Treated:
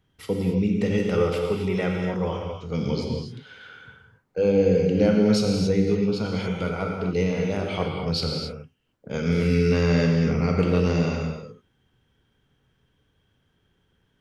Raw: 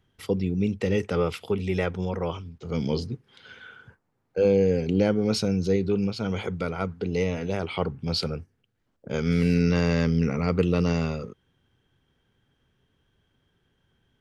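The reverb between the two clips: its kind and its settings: gated-style reverb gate 300 ms flat, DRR 0 dB; trim -1 dB

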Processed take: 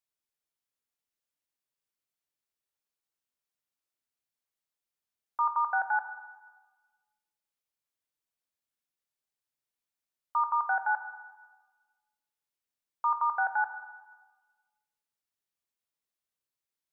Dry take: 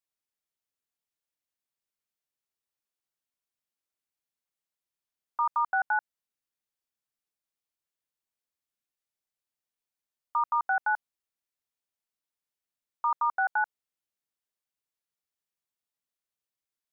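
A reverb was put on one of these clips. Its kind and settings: plate-style reverb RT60 1.3 s, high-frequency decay 0.95×, DRR 7.5 dB; trim -1.5 dB

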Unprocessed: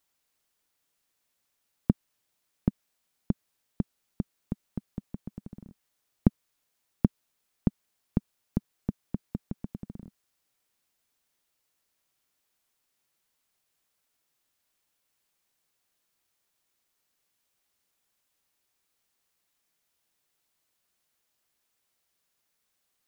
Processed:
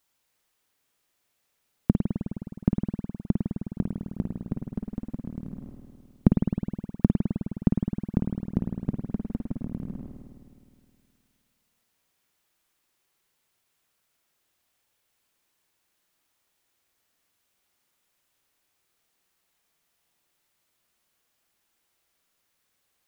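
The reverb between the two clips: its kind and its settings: spring tank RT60 2.2 s, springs 52 ms, chirp 75 ms, DRR 1 dB; trim +2.5 dB

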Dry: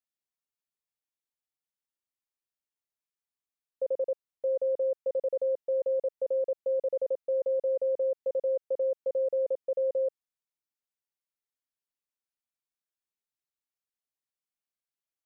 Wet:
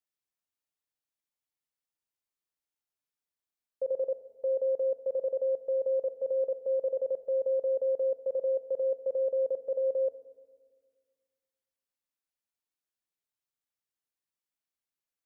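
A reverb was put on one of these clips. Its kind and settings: FDN reverb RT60 1.7 s, low-frequency decay 1.5×, high-frequency decay 0.45×, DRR 10.5 dB; trim -1 dB

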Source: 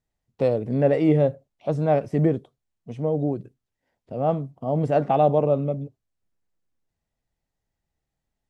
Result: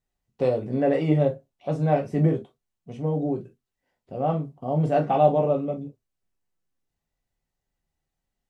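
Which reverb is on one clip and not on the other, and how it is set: gated-style reverb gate 80 ms falling, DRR 1 dB; trim -3 dB

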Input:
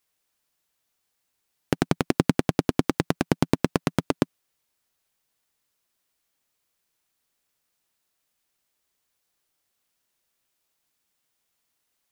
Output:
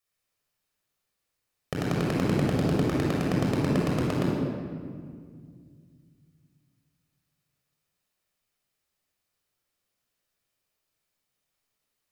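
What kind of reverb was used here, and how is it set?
simulated room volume 3600 m³, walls mixed, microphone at 6.1 m; trim -10.5 dB

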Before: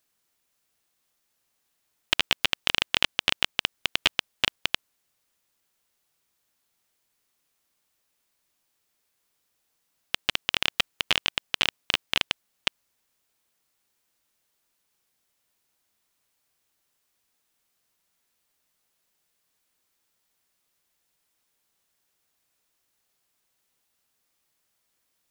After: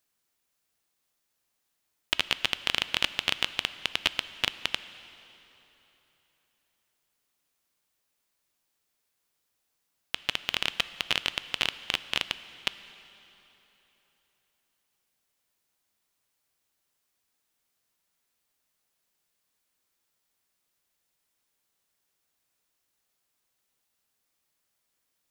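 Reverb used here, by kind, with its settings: plate-style reverb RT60 3.6 s, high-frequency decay 0.85×, DRR 13.5 dB; trim -3.5 dB

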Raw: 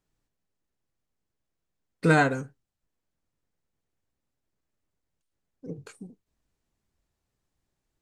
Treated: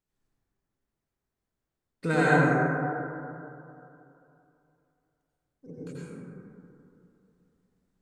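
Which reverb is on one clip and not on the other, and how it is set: plate-style reverb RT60 2.8 s, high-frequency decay 0.25×, pre-delay 75 ms, DRR -8.5 dB; trim -8 dB

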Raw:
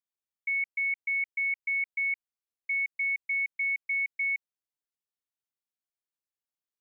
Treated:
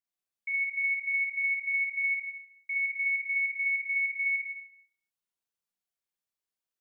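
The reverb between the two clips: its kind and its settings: Schroeder reverb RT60 0.65 s, combs from 33 ms, DRR -4 dB; trim -4 dB

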